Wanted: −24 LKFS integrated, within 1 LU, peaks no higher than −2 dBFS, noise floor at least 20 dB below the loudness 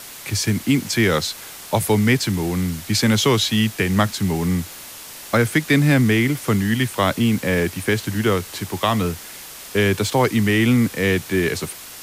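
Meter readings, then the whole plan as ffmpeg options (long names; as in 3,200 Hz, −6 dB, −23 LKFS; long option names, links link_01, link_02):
background noise floor −38 dBFS; target noise floor −40 dBFS; integrated loudness −19.5 LKFS; sample peak −5.0 dBFS; target loudness −24.0 LKFS
→ -af "afftdn=noise_reduction=6:noise_floor=-38"
-af "volume=-4.5dB"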